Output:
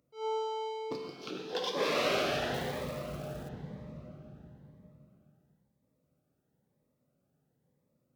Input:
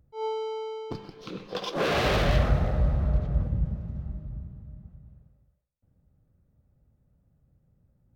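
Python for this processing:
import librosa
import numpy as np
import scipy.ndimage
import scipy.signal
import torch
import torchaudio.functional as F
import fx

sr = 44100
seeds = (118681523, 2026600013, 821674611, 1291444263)

p1 = fx.rider(x, sr, range_db=4, speed_s=0.5)
p2 = x + F.gain(torch.from_numpy(p1), 2.0).numpy()
p3 = scipy.signal.sosfilt(scipy.signal.butter(2, 310.0, 'highpass', fs=sr, output='sos'), p2)
p4 = fx.rev_plate(p3, sr, seeds[0], rt60_s=2.6, hf_ratio=1.0, predelay_ms=0, drr_db=1.5)
p5 = fx.quant_float(p4, sr, bits=2, at=(2.54, 3.49))
p6 = fx.notch_cascade(p5, sr, direction='rising', hz=1.0)
y = F.gain(torch.from_numpy(p6), -9.0).numpy()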